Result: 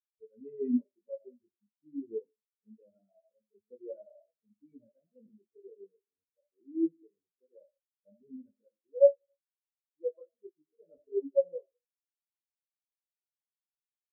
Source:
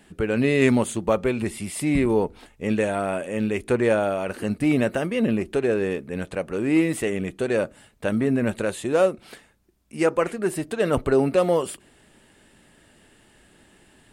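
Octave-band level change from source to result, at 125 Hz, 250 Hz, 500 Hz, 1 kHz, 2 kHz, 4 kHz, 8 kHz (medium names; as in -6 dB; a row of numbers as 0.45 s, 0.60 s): under -40 dB, -16.0 dB, -11.0 dB, under -40 dB, under -40 dB, under -40 dB, under -40 dB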